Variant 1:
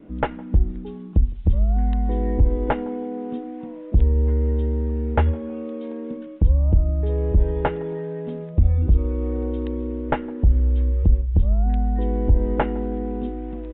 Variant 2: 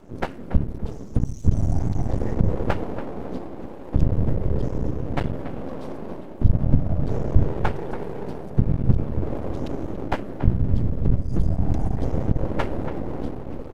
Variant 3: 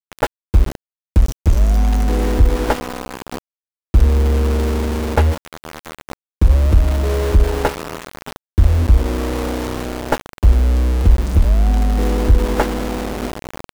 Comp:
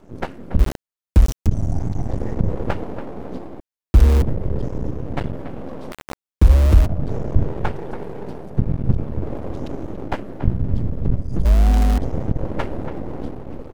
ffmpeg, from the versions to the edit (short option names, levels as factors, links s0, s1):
-filter_complex "[2:a]asplit=4[s0][s1][s2][s3];[1:a]asplit=5[s4][s5][s6][s7][s8];[s4]atrim=end=0.592[s9];[s0]atrim=start=0.588:end=1.472[s10];[s5]atrim=start=1.468:end=3.602[s11];[s1]atrim=start=3.598:end=4.222[s12];[s6]atrim=start=4.218:end=5.922[s13];[s2]atrim=start=5.918:end=6.862[s14];[s7]atrim=start=6.858:end=11.452[s15];[s3]atrim=start=11.448:end=11.982[s16];[s8]atrim=start=11.978[s17];[s9][s10]acrossfade=d=0.004:c1=hsin:c2=hsin[s18];[s18][s11]acrossfade=d=0.004:c1=hsin:c2=hsin[s19];[s19][s12]acrossfade=d=0.004:c1=hsin:c2=hsin[s20];[s20][s13]acrossfade=d=0.004:c1=hsin:c2=hsin[s21];[s21][s14]acrossfade=d=0.004:c1=hsin:c2=hsin[s22];[s22][s15]acrossfade=d=0.004:c1=hsin:c2=hsin[s23];[s23][s16]acrossfade=d=0.004:c1=hsin:c2=hsin[s24];[s24][s17]acrossfade=d=0.004:c1=hsin:c2=hsin"